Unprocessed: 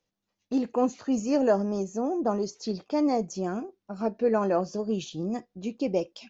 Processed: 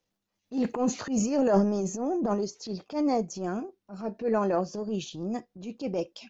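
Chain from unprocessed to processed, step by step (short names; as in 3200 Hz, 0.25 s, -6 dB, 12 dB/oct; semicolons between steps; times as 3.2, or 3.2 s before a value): transient shaper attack -10 dB, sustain +10 dB, from 2.33 s sustain 0 dB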